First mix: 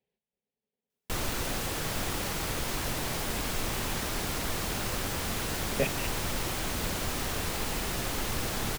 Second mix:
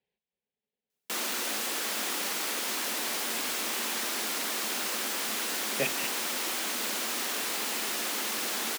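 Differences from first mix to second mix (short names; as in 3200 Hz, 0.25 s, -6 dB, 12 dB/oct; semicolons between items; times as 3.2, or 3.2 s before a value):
background: add Chebyshev high-pass 210 Hz, order 5; master: add tilt shelf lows -4 dB, about 900 Hz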